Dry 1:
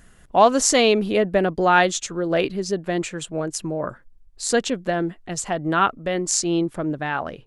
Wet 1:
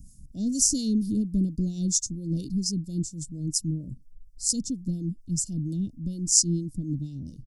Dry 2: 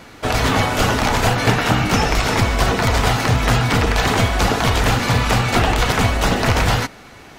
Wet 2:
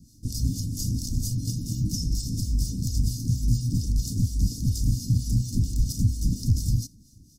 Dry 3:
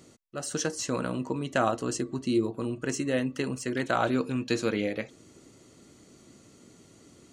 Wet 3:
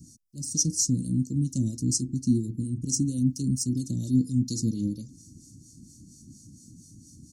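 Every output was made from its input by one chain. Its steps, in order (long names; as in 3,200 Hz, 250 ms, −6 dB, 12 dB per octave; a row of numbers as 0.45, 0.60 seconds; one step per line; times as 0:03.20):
two-band tremolo in antiphase 4.3 Hz, depth 70%, crossover 510 Hz
Chebyshev band-stop filter 310–5,100 Hz, order 4
comb filter 1.4 ms, depth 64%
loudness normalisation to −27 LKFS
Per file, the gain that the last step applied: +4.0, −5.0, +10.0 decibels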